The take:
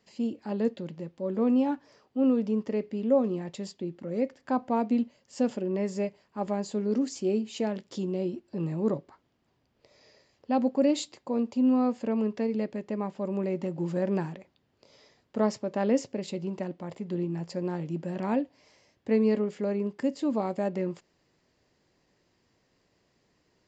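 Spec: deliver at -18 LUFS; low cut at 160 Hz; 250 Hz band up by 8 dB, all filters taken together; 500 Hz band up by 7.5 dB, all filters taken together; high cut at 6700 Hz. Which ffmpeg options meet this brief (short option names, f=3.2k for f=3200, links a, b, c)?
-af "highpass=160,lowpass=6.7k,equalizer=f=250:t=o:g=8.5,equalizer=f=500:t=o:g=6.5,volume=4dB"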